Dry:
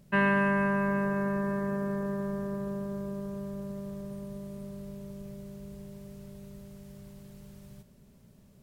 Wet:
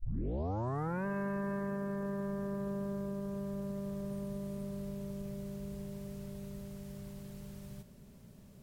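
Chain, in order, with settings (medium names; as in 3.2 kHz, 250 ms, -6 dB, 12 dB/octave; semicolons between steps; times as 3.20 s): tape start-up on the opening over 1.06 s; compression 3:1, threshold -38 dBFS, peak gain reduction 11 dB; trim +2 dB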